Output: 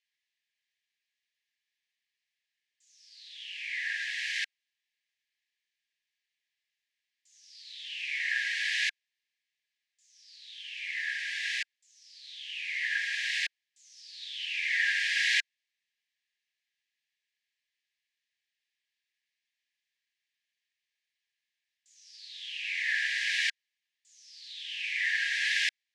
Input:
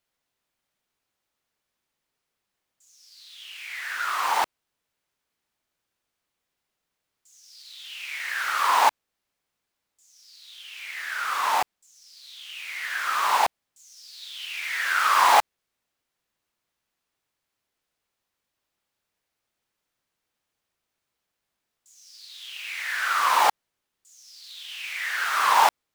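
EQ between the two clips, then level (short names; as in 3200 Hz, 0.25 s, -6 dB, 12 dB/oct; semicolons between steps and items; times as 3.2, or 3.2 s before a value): brick-wall FIR band-pass 1600–13000 Hz; air absorption 120 m; +2.0 dB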